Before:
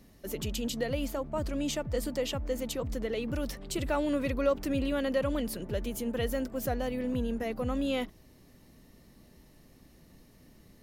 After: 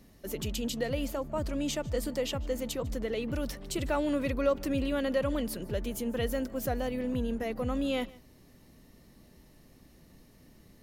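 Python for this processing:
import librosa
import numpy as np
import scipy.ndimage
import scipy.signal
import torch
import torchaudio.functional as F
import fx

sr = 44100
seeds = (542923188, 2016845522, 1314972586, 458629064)

y = x + 10.0 ** (-22.5 / 20.0) * np.pad(x, (int(150 * sr / 1000.0), 0))[:len(x)]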